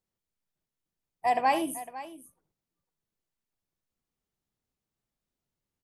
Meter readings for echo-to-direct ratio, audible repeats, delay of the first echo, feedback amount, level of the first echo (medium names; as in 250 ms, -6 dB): -11.5 dB, 2, 75 ms, no regular repeats, -13.5 dB